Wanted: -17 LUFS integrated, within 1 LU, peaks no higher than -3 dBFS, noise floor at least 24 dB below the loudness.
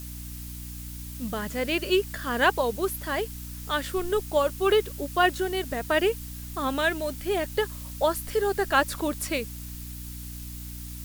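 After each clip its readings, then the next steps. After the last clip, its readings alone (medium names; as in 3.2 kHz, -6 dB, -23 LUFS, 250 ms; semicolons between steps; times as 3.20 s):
hum 60 Hz; highest harmonic 300 Hz; hum level -37 dBFS; noise floor -39 dBFS; noise floor target -51 dBFS; loudness -27.0 LUFS; peak level -8.0 dBFS; loudness target -17.0 LUFS
-> de-hum 60 Hz, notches 5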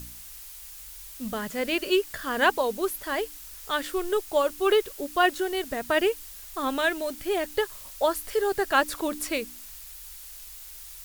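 hum not found; noise floor -44 dBFS; noise floor target -51 dBFS
-> noise reduction 7 dB, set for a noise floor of -44 dBFS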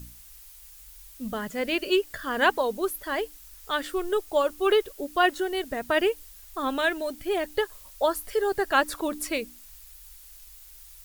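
noise floor -49 dBFS; noise floor target -51 dBFS
-> noise reduction 6 dB, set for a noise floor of -49 dBFS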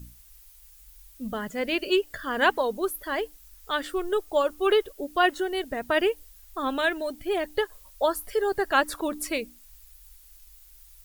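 noise floor -53 dBFS; loudness -27.0 LUFS; peak level -8.5 dBFS; loudness target -17.0 LUFS
-> trim +10 dB; peak limiter -3 dBFS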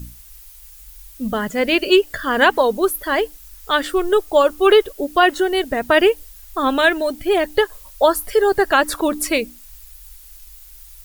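loudness -17.5 LUFS; peak level -3.0 dBFS; noise floor -43 dBFS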